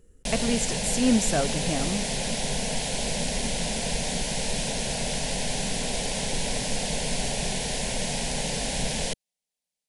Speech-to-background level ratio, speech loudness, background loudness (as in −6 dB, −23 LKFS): 1.0 dB, −27.0 LKFS, −28.0 LKFS